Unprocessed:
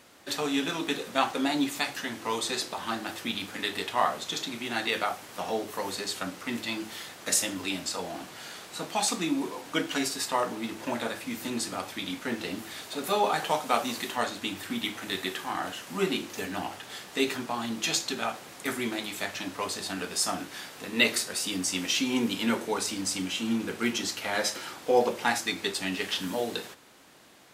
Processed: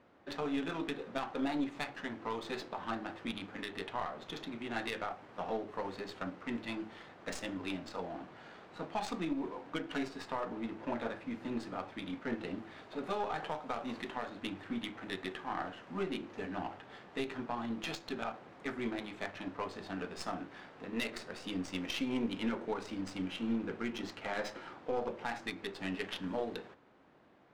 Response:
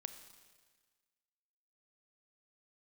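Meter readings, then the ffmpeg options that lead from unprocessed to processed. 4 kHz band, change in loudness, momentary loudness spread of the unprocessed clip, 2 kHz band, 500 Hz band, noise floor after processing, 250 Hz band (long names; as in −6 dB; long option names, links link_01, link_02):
−14.5 dB, −9.5 dB, 9 LU, −10.5 dB, −8.0 dB, −56 dBFS, −6.0 dB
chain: -af "aeval=exprs='0.398*(cos(1*acos(clip(val(0)/0.398,-1,1)))-cos(1*PI/2))+0.0501*(cos(4*acos(clip(val(0)/0.398,-1,1)))-cos(4*PI/2))':channel_layout=same,adynamicsmooth=sensitivity=1.5:basefreq=1600,alimiter=limit=-20dB:level=0:latency=1:release=173,volume=-4.5dB"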